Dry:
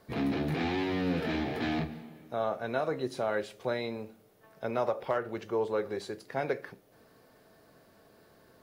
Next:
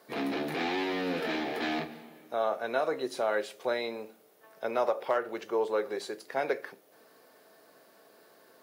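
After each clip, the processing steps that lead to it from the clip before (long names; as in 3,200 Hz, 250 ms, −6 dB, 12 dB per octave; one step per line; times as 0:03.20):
high-pass filter 340 Hz 12 dB per octave
high-shelf EQ 8,000 Hz +4 dB
level +2.5 dB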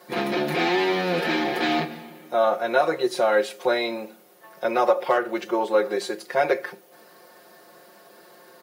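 comb filter 5.6 ms, depth 99%
level +6 dB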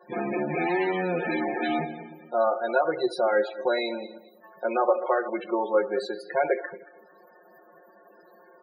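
feedback delay that plays each chunk backwards 113 ms, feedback 48%, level −13 dB
spectral peaks only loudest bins 32
level −3 dB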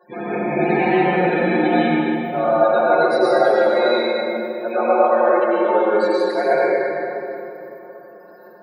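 convolution reverb RT60 3.0 s, pre-delay 87 ms, DRR −8 dB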